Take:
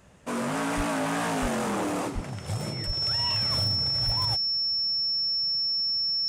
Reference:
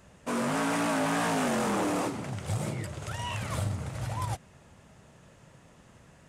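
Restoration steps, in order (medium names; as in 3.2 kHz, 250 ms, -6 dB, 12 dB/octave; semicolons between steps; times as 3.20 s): clip repair -20 dBFS; band-stop 5.4 kHz, Q 30; de-plosive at 0.76/1.41/2.14/2.86/4.05 s; interpolate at 1.89/2.61/3.31 s, 1.5 ms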